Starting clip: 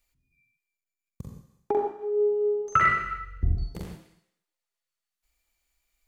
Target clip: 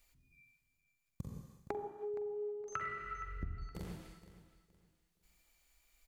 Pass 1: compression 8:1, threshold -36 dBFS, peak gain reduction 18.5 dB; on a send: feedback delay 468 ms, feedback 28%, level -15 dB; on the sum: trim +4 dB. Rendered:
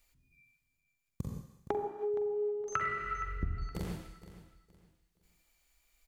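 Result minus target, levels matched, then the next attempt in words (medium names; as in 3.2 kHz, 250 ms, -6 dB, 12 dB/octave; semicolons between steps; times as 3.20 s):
compression: peak gain reduction -7 dB
compression 8:1, threshold -44 dBFS, peak gain reduction 25.5 dB; on a send: feedback delay 468 ms, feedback 28%, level -15 dB; on the sum: trim +4 dB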